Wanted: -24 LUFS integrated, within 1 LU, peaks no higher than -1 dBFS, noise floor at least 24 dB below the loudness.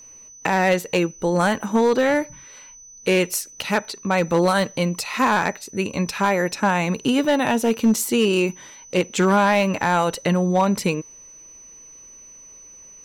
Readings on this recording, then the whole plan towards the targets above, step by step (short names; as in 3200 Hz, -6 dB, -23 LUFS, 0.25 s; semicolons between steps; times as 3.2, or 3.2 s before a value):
clipped 0.9%; flat tops at -11.0 dBFS; steady tone 6000 Hz; tone level -42 dBFS; loudness -20.5 LUFS; peak -11.0 dBFS; loudness target -24.0 LUFS
-> clip repair -11 dBFS; notch 6000 Hz, Q 30; gain -3.5 dB